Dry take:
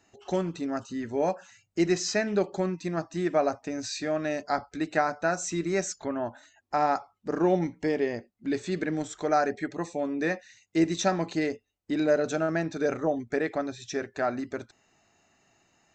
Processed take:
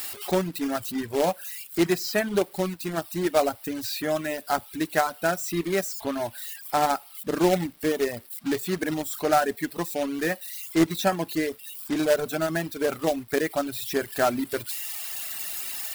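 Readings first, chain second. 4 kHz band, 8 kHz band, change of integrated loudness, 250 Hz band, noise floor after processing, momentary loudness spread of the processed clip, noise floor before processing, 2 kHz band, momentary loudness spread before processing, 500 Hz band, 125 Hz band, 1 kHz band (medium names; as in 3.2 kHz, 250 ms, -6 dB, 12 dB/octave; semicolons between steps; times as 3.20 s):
+6.0 dB, +4.0 dB, +2.5 dB, +1.5 dB, -48 dBFS, 7 LU, -72 dBFS, +3.0 dB, 8 LU, +2.0 dB, +1.0 dB, +2.5 dB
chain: zero-crossing glitches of -28.5 dBFS; gain riding 2 s; peaking EQ 6.4 kHz -13.5 dB 0.33 oct; companded quantiser 4-bit; reverb removal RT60 1.1 s; trim +2.5 dB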